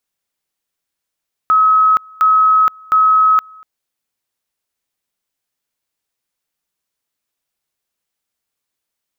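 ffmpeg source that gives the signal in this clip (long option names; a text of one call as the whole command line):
ffmpeg -f lavfi -i "aevalsrc='pow(10,(-7.5-28.5*gte(mod(t,0.71),0.47))/20)*sin(2*PI*1280*t)':duration=2.13:sample_rate=44100" out.wav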